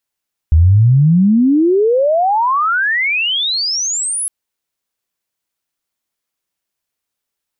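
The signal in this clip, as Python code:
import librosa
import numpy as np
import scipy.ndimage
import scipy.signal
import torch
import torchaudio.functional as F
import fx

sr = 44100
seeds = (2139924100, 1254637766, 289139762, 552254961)

y = fx.chirp(sr, length_s=3.76, from_hz=75.0, to_hz=11000.0, law='logarithmic', from_db=-5.0, to_db=-16.5)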